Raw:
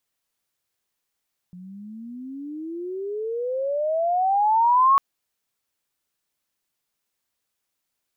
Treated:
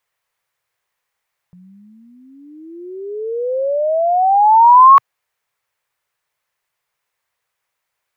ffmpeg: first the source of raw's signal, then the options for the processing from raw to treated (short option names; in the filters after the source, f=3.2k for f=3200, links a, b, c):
-f lavfi -i "aevalsrc='pow(10,(-12.5+25.5*(t/3.45-1))/20)*sin(2*PI*176*3.45/(32*log(2)/12)*(exp(32*log(2)/12*t/3.45)-1))':d=3.45:s=44100"
-af "equalizer=f=125:t=o:w=1:g=7,equalizer=f=250:t=o:w=1:g=-11,equalizer=f=500:t=o:w=1:g=7,equalizer=f=1k:t=o:w=1:g=8,equalizer=f=2k:t=o:w=1:g=9"